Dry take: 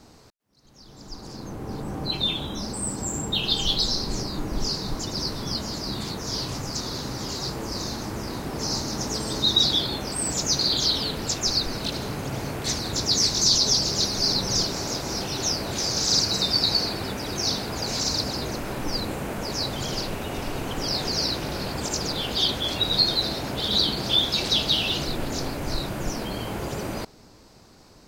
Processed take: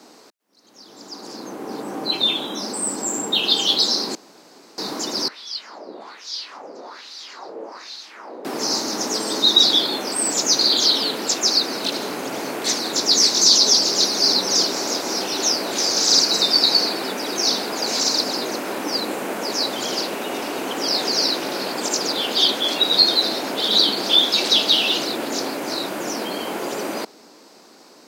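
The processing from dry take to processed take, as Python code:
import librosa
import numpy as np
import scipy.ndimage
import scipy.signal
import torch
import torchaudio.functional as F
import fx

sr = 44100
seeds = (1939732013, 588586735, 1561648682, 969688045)

y = fx.wah_lfo(x, sr, hz=1.2, low_hz=480.0, high_hz=4000.0, q=2.7, at=(5.28, 8.45))
y = fx.edit(y, sr, fx.room_tone_fill(start_s=4.15, length_s=0.63), tone=tone)
y = scipy.signal.sosfilt(scipy.signal.butter(4, 250.0, 'highpass', fs=sr, output='sos'), y)
y = y * librosa.db_to_amplitude(6.0)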